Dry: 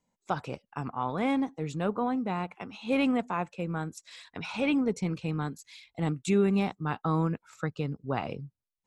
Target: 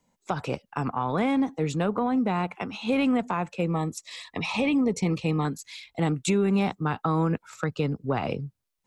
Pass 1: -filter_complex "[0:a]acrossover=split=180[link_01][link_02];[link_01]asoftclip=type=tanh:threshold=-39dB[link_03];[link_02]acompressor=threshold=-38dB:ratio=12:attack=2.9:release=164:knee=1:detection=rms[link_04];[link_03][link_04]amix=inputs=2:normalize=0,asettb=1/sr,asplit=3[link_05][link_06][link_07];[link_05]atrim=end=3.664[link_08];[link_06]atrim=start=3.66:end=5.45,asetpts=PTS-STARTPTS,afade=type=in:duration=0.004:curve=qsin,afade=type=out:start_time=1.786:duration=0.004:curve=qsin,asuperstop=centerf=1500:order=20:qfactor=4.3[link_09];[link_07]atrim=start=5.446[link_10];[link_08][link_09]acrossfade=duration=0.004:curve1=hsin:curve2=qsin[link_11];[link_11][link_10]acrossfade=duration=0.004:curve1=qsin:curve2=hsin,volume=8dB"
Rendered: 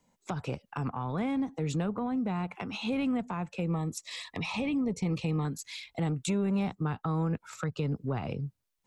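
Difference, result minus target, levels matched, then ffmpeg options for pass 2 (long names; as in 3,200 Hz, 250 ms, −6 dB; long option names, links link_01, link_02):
downward compressor: peak gain reduction +9 dB
-filter_complex "[0:a]acrossover=split=180[link_01][link_02];[link_01]asoftclip=type=tanh:threshold=-39dB[link_03];[link_02]acompressor=threshold=-28dB:ratio=12:attack=2.9:release=164:knee=1:detection=rms[link_04];[link_03][link_04]amix=inputs=2:normalize=0,asettb=1/sr,asplit=3[link_05][link_06][link_07];[link_05]atrim=end=3.664[link_08];[link_06]atrim=start=3.66:end=5.45,asetpts=PTS-STARTPTS,afade=type=in:duration=0.004:curve=qsin,afade=type=out:start_time=1.786:duration=0.004:curve=qsin,asuperstop=centerf=1500:order=20:qfactor=4.3[link_09];[link_07]atrim=start=5.446[link_10];[link_08][link_09]acrossfade=duration=0.004:curve1=hsin:curve2=qsin[link_11];[link_11][link_10]acrossfade=duration=0.004:curve1=qsin:curve2=hsin,volume=8dB"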